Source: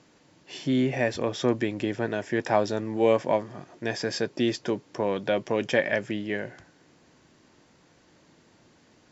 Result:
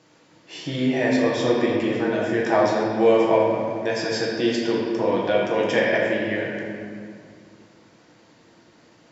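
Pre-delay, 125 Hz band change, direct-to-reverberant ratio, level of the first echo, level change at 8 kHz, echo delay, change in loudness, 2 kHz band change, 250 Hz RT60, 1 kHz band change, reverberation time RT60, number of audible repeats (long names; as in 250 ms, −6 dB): 6 ms, +2.0 dB, −4.5 dB, no echo audible, can't be measured, no echo audible, +5.5 dB, +5.5 dB, 2.8 s, +6.0 dB, 2.2 s, no echo audible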